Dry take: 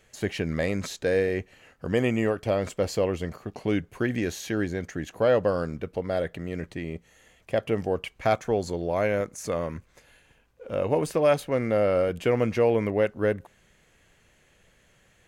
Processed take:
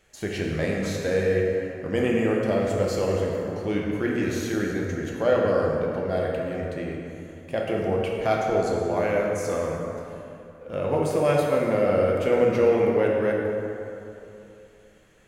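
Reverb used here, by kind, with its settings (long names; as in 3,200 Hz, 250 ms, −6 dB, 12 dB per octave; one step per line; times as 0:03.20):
dense smooth reverb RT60 2.9 s, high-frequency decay 0.5×, DRR −2.5 dB
level −2.5 dB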